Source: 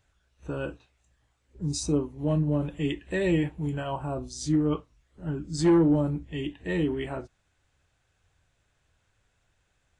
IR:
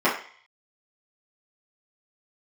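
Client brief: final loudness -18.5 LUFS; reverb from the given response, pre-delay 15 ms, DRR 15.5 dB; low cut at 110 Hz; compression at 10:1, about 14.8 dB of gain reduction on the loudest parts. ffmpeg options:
-filter_complex "[0:a]highpass=110,acompressor=threshold=-32dB:ratio=10,asplit=2[a][b];[1:a]atrim=start_sample=2205,adelay=15[c];[b][c]afir=irnorm=-1:irlink=0,volume=-33.5dB[d];[a][d]amix=inputs=2:normalize=0,volume=19dB"

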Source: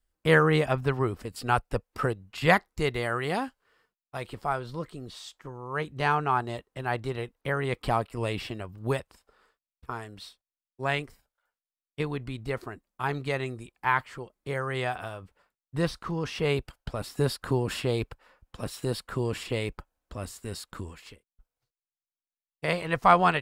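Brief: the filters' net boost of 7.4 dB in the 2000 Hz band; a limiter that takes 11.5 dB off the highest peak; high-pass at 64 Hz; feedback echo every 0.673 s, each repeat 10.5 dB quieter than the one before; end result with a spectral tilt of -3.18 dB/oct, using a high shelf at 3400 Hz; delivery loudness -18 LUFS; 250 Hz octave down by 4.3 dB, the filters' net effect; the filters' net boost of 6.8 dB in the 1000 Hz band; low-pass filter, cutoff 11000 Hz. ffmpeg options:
-af "highpass=64,lowpass=11k,equalizer=f=250:t=o:g=-8,equalizer=f=1k:t=o:g=7.5,equalizer=f=2k:t=o:g=8.5,highshelf=f=3.4k:g=-6.5,alimiter=limit=-11dB:level=0:latency=1,aecho=1:1:673|1346|2019:0.299|0.0896|0.0269,volume=10dB"

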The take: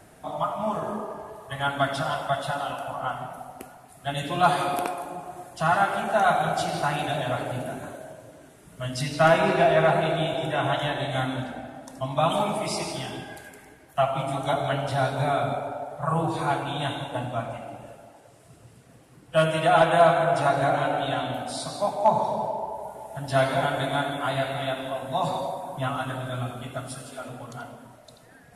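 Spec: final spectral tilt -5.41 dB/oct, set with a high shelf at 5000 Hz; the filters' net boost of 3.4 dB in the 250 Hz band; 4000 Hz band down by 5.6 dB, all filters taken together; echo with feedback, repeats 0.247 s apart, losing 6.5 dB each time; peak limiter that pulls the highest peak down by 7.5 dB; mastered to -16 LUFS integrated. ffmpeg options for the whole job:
-af "equalizer=f=250:t=o:g=5,equalizer=f=4k:t=o:g=-4,highshelf=f=5k:g=-8,alimiter=limit=-14dB:level=0:latency=1,aecho=1:1:247|494|741|988|1235|1482:0.473|0.222|0.105|0.0491|0.0231|0.0109,volume=10dB"

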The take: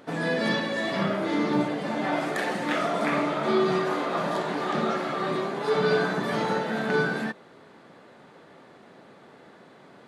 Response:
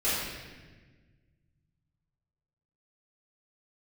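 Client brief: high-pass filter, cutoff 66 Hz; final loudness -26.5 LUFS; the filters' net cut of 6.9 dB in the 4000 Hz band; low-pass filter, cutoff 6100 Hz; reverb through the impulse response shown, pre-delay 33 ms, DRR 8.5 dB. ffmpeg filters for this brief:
-filter_complex "[0:a]highpass=66,lowpass=6.1k,equalizer=f=4k:t=o:g=-8,asplit=2[a][b];[1:a]atrim=start_sample=2205,adelay=33[c];[b][c]afir=irnorm=-1:irlink=0,volume=-20dB[d];[a][d]amix=inputs=2:normalize=0"

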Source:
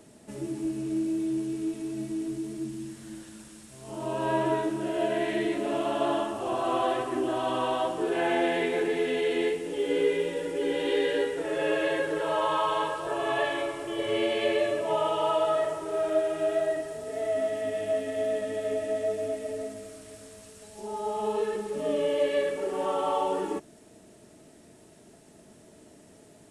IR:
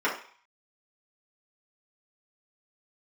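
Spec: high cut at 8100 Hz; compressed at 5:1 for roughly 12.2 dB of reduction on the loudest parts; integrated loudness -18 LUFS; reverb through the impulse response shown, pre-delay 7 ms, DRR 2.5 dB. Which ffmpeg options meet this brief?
-filter_complex "[0:a]lowpass=8.1k,acompressor=threshold=-35dB:ratio=5,asplit=2[a][b];[1:a]atrim=start_sample=2205,adelay=7[c];[b][c]afir=irnorm=-1:irlink=0,volume=-16dB[d];[a][d]amix=inputs=2:normalize=0,volume=18dB"

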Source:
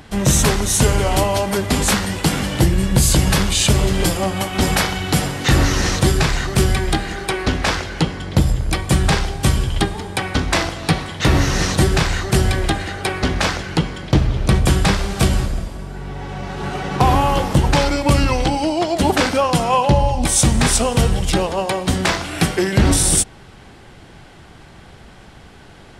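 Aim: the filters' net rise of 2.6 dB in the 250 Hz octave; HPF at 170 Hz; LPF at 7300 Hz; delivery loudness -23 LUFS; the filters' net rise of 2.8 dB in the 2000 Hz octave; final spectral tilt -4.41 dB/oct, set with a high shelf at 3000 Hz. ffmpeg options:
-af "highpass=170,lowpass=7.3k,equalizer=f=250:t=o:g=5.5,equalizer=f=2k:t=o:g=6.5,highshelf=f=3k:g=-8.5,volume=-4.5dB"

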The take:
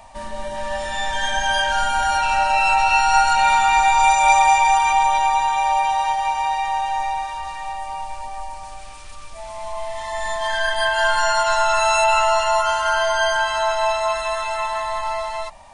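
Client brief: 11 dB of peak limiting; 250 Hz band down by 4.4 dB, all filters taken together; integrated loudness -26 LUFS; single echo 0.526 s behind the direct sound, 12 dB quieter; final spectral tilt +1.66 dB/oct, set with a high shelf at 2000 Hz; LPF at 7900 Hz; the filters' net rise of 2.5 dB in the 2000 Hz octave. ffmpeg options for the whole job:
-af "lowpass=7.9k,equalizer=f=250:t=o:g=-5.5,highshelf=f=2k:g=-8,equalizer=f=2k:t=o:g=9,alimiter=limit=-12.5dB:level=0:latency=1,aecho=1:1:526:0.251,volume=-5dB"

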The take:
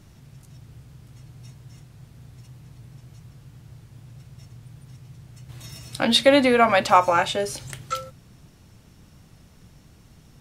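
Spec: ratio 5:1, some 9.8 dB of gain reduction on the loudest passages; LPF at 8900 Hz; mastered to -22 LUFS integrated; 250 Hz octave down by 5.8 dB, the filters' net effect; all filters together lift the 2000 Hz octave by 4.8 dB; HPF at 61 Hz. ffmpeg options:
-af "highpass=61,lowpass=8.9k,equalizer=f=250:t=o:g=-6.5,equalizer=f=2k:t=o:g=6,acompressor=threshold=-21dB:ratio=5,volume=4.5dB"

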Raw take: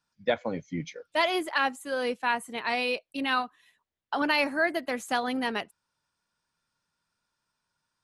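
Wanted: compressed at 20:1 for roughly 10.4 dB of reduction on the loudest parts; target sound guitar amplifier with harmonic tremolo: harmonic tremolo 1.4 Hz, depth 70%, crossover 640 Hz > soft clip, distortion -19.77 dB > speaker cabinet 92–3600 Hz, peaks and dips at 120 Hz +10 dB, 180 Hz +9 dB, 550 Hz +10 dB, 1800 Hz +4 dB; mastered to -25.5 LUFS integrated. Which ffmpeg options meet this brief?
-filter_complex "[0:a]acompressor=threshold=-30dB:ratio=20,acrossover=split=640[a][b];[a]aeval=exprs='val(0)*(1-0.7/2+0.7/2*cos(2*PI*1.4*n/s))':c=same[c];[b]aeval=exprs='val(0)*(1-0.7/2-0.7/2*cos(2*PI*1.4*n/s))':c=same[d];[c][d]amix=inputs=2:normalize=0,asoftclip=threshold=-27.5dB,highpass=92,equalizer=f=120:t=q:w=4:g=10,equalizer=f=180:t=q:w=4:g=9,equalizer=f=550:t=q:w=4:g=10,equalizer=f=1.8k:t=q:w=4:g=4,lowpass=f=3.6k:w=0.5412,lowpass=f=3.6k:w=1.3066,volume=11dB"

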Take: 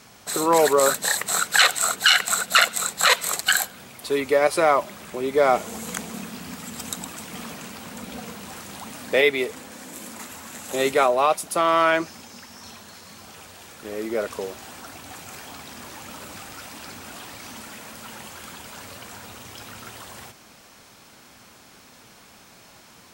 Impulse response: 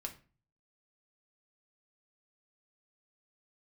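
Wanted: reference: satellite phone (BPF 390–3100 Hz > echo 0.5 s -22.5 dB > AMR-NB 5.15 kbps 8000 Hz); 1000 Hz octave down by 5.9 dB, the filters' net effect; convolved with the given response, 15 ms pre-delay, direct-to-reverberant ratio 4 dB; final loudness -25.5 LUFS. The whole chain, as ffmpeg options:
-filter_complex "[0:a]equalizer=f=1k:t=o:g=-8,asplit=2[a][b];[1:a]atrim=start_sample=2205,adelay=15[c];[b][c]afir=irnorm=-1:irlink=0,volume=-2dB[d];[a][d]amix=inputs=2:normalize=0,highpass=390,lowpass=3.1k,aecho=1:1:500:0.075,volume=1.5dB" -ar 8000 -c:a libopencore_amrnb -b:a 5150

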